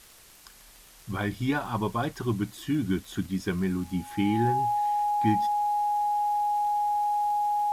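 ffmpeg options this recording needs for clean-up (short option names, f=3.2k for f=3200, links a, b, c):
-af "adeclick=t=4,bandreject=f=830:w=30,afwtdn=0.0025"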